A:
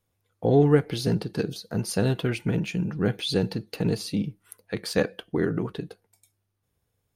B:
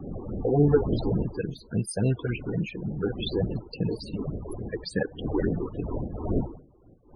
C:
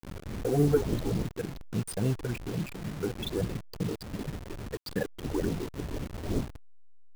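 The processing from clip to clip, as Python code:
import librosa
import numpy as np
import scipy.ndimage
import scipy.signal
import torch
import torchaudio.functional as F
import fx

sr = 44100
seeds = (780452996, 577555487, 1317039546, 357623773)

y1 = fx.dmg_wind(x, sr, seeds[0], corner_hz=390.0, level_db=-32.0)
y1 = fx.phaser_stages(y1, sr, stages=6, low_hz=150.0, high_hz=1500.0, hz=3.5, feedback_pct=20)
y1 = fx.spec_topn(y1, sr, count=32)
y2 = fx.delta_hold(y1, sr, step_db=-31.5)
y2 = F.gain(torch.from_numpy(y2), -3.5).numpy()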